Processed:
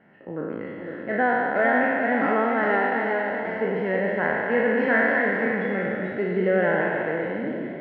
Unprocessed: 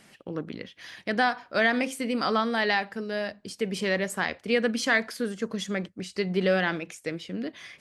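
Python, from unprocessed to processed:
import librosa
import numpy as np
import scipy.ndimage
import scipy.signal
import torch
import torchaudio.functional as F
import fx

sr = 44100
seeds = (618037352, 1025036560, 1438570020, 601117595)

y = fx.spec_trails(x, sr, decay_s=2.53)
y = scipy.signal.sosfilt(scipy.signal.butter(4, 1800.0, 'lowpass', fs=sr, output='sos'), y)
y = fx.echo_pitch(y, sr, ms=525, semitones=1, count=3, db_per_echo=-6.0)
y = fx.notch_comb(y, sr, f0_hz=1200.0)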